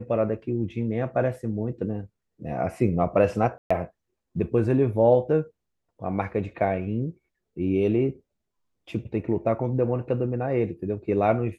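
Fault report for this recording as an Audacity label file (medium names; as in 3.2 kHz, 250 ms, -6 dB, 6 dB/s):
3.580000	3.710000	dropout 125 ms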